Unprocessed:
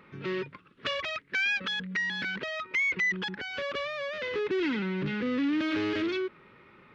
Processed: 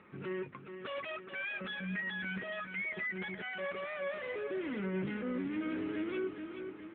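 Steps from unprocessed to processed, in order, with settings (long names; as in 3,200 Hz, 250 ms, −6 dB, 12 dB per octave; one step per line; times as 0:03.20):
0:02.17–0:04.55: mu-law and A-law mismatch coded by A
parametric band 140 Hz −4.5 dB 0.3 octaves
mains-hum notches 60/120/180/240/300/360 Hz
brickwall limiter −30 dBFS, peak gain reduction 11 dB
pitch vibrato 9.5 Hz 11 cents
high-frequency loss of the air 270 metres
double-tracking delay 16 ms −13 dB
repeating echo 424 ms, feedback 56%, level −8 dB
AMR narrowband 10.2 kbit/s 8,000 Hz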